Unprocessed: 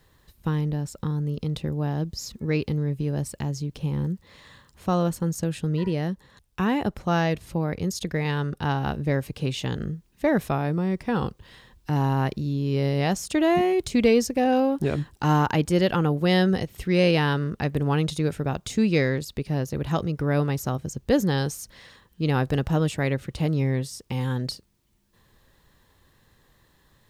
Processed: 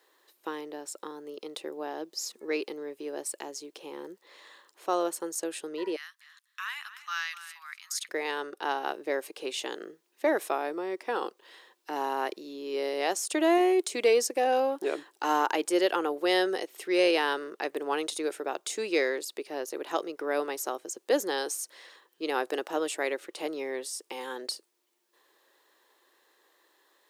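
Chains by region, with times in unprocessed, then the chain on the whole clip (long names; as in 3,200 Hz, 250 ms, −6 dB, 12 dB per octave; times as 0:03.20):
0:05.96–0:08.09: Butterworth high-pass 1,200 Hz 48 dB per octave + single-tap delay 251 ms −13.5 dB
whole clip: elliptic high-pass filter 340 Hz, stop band 80 dB; dynamic equaliser 9,100 Hz, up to +7 dB, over −54 dBFS, Q 1.3; level −1.5 dB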